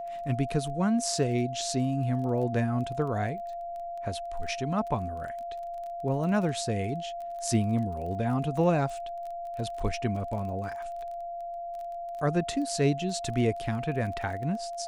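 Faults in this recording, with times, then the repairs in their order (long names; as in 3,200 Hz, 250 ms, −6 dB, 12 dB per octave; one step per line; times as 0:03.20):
surface crackle 20 per second −37 dBFS
whistle 690 Hz −34 dBFS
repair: click removal
notch filter 690 Hz, Q 30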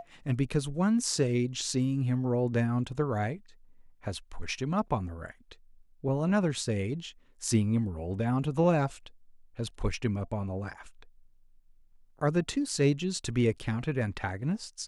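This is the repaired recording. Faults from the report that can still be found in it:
none of them is left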